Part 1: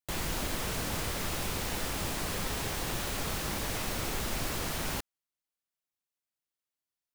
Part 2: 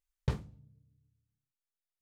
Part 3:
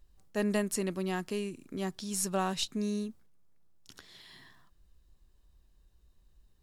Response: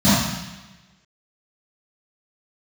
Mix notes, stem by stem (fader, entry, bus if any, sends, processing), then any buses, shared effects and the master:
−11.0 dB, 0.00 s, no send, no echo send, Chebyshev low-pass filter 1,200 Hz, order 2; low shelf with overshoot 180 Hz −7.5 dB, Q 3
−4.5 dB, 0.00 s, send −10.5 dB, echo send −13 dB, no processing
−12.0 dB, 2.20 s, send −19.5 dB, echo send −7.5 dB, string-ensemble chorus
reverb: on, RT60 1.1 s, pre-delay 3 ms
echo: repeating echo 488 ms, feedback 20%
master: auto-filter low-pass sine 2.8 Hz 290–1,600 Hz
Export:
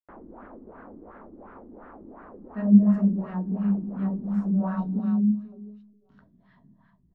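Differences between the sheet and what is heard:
stem 2: muted
stem 3: missing string-ensemble chorus

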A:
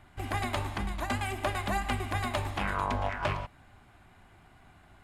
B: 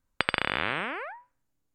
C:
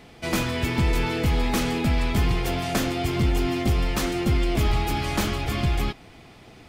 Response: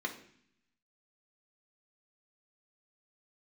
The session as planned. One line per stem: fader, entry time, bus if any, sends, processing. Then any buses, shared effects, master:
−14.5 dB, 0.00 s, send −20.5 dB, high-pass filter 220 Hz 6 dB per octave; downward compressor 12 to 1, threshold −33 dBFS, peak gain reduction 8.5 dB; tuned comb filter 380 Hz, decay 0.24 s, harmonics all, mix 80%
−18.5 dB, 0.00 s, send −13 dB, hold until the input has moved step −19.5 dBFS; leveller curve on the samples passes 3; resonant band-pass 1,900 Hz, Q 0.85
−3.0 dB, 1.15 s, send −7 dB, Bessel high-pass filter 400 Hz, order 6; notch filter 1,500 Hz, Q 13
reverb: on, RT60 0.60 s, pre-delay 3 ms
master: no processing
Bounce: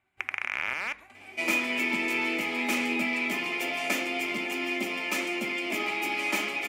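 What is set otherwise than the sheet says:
stem A −14.5 dB → −7.5 dB
stem B −18.5 dB → −11.5 dB
master: extra parametric band 2,300 Hz +10.5 dB 0.41 octaves

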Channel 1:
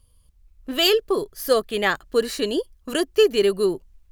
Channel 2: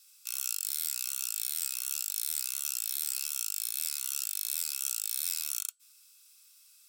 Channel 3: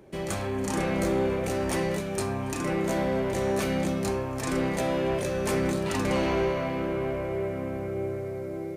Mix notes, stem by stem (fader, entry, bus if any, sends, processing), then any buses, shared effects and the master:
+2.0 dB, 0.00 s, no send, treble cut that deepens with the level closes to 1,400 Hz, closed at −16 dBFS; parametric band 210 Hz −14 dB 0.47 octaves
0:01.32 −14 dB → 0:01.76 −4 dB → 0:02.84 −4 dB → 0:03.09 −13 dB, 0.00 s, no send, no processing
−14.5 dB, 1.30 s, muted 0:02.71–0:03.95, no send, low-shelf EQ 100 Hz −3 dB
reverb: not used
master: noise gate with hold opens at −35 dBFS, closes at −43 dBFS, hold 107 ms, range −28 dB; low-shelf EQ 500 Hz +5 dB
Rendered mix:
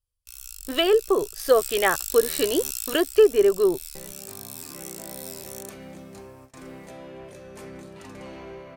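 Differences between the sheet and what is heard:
stem 2 −14.0 dB → −7.5 dB
stem 3: entry 1.30 s → 2.10 s
master: missing low-shelf EQ 500 Hz +5 dB

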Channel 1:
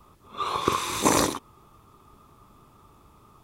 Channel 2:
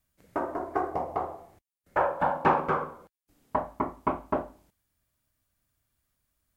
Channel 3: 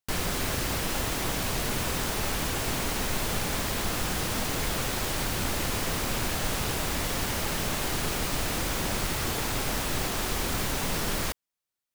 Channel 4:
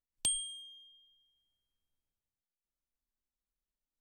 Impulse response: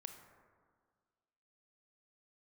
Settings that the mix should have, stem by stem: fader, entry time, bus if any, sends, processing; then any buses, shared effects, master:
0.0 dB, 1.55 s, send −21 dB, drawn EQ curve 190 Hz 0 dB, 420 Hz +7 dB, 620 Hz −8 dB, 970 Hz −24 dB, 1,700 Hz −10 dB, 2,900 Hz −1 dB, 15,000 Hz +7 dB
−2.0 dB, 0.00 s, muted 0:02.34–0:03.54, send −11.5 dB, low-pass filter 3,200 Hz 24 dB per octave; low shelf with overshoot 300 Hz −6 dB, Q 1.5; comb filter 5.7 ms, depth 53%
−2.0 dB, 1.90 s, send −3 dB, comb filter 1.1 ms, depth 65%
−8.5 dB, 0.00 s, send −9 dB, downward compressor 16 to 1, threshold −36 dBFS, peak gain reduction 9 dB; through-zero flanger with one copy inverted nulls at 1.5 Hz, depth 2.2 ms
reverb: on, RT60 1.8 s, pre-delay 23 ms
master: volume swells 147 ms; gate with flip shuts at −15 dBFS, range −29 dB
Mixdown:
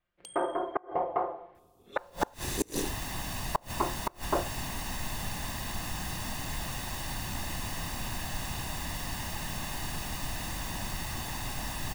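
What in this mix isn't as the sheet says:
stem 1 0.0 dB → −10.5 dB
stem 3 −2.0 dB → −11.5 dB
master: missing volume swells 147 ms

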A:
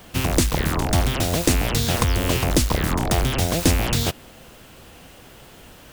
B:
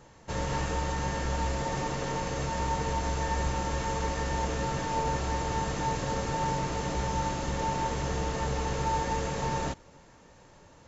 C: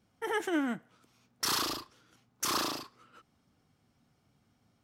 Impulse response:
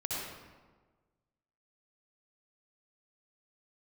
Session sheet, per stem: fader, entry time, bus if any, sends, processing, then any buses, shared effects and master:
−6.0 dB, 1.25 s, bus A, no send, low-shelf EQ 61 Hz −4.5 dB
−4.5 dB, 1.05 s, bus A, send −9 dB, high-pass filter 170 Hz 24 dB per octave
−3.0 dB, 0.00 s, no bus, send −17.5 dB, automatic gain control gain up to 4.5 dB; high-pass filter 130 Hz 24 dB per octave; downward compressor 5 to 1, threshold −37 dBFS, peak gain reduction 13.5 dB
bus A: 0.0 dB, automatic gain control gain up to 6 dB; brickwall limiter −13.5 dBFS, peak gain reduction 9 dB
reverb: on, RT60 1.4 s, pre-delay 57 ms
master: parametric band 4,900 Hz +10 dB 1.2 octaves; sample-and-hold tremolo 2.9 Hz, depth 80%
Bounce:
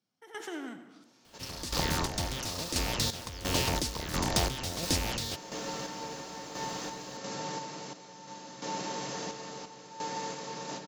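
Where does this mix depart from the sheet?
stem A −6.0 dB → −14.5 dB
stem B −4.5 dB → −15.0 dB
reverb return +8.5 dB

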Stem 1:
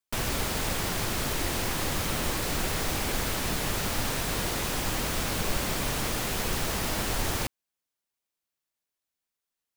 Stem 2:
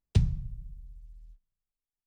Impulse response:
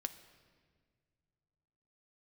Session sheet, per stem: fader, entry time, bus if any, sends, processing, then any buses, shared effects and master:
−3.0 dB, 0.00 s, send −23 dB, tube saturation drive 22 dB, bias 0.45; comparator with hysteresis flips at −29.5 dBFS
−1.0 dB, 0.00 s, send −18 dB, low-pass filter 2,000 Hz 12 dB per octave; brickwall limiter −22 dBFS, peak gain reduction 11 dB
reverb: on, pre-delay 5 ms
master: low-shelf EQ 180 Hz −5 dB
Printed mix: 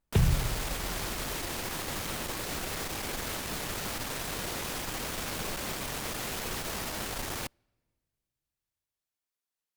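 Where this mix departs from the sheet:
stem 1: missing comparator with hysteresis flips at −29.5 dBFS
stem 2 −1.0 dB → +9.5 dB

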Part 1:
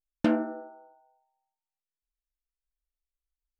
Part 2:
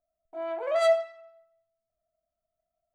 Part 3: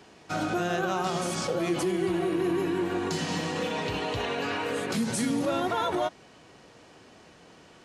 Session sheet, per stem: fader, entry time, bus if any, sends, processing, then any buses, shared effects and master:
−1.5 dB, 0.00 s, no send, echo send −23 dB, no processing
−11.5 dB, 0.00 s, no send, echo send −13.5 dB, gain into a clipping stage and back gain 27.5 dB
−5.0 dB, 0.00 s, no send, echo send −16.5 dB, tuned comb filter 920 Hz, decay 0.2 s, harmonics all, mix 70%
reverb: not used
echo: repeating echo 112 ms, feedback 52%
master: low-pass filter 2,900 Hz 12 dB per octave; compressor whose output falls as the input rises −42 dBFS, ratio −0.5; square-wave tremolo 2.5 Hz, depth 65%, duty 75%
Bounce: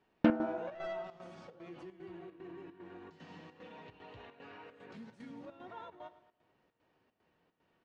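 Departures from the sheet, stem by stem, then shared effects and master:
stem 3 −5.0 dB → −11.5 dB
master: missing compressor whose output falls as the input rises −42 dBFS, ratio −0.5

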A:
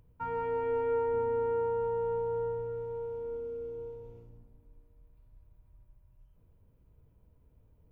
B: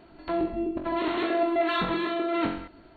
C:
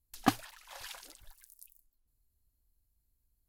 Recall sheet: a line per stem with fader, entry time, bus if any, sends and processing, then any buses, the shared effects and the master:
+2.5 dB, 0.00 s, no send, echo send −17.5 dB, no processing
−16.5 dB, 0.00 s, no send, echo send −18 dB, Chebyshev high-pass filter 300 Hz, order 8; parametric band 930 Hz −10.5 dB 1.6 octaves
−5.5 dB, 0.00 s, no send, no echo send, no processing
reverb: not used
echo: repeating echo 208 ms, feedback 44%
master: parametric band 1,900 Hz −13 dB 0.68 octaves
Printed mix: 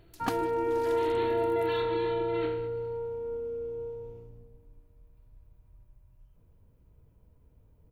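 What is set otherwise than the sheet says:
stem B −16.5 dB → −5.0 dB
master: missing parametric band 1,900 Hz −13 dB 0.68 octaves

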